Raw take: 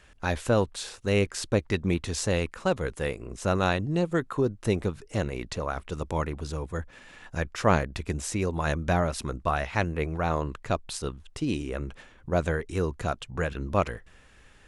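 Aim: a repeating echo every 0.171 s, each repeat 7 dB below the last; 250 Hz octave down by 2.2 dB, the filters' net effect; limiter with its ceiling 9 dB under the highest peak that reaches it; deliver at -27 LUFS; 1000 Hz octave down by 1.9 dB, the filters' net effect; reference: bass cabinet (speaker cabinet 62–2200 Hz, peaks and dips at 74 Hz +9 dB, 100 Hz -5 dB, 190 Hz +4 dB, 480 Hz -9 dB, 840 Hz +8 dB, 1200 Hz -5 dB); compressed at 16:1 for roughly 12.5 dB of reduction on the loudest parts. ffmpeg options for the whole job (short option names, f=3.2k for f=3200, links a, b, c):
-af "equalizer=f=250:t=o:g=-5.5,equalizer=f=1k:t=o:g=-5.5,acompressor=threshold=-32dB:ratio=16,alimiter=level_in=3dB:limit=-24dB:level=0:latency=1,volume=-3dB,highpass=f=62:w=0.5412,highpass=f=62:w=1.3066,equalizer=f=74:t=q:w=4:g=9,equalizer=f=100:t=q:w=4:g=-5,equalizer=f=190:t=q:w=4:g=4,equalizer=f=480:t=q:w=4:g=-9,equalizer=f=840:t=q:w=4:g=8,equalizer=f=1.2k:t=q:w=4:g=-5,lowpass=f=2.2k:w=0.5412,lowpass=f=2.2k:w=1.3066,aecho=1:1:171|342|513|684|855:0.447|0.201|0.0905|0.0407|0.0183,volume=12dB"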